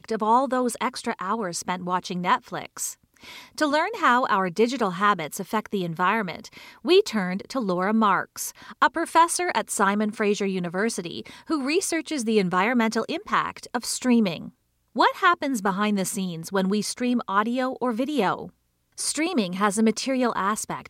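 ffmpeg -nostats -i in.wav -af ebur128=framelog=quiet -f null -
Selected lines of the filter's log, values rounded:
Integrated loudness:
  I:         -24.1 LUFS
  Threshold: -34.4 LUFS
Loudness range:
  LRA:         2.6 LU
  Threshold: -44.4 LUFS
  LRA low:   -25.7 LUFS
  LRA high:  -23.1 LUFS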